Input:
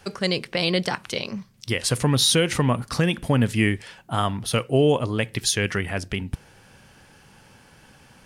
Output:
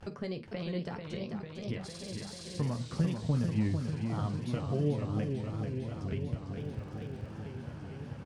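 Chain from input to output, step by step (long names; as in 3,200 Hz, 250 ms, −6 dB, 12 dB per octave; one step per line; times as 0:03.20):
high-pass filter 83 Hz 24 dB per octave
noise gate with hold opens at −43 dBFS
flanger 0.63 Hz, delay 5.6 ms, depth 6.7 ms, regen +65%
downward compressor 2 to 1, threshold −46 dBFS, peak gain reduction 16.5 dB
ambience of single reflections 13 ms −9 dB, 50 ms −16 dB
upward compression, threshold −45 dBFS
spectral tilt −3.5 dB per octave
pitch vibrato 0.73 Hz 54 cents
low-pass filter 8,900 Hz 12 dB per octave
buffer that repeats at 0:01.85/0:05.26/0:06.56, samples 2,048, times 15
feedback echo with a swinging delay time 447 ms, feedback 78%, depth 164 cents, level −6 dB
level −2 dB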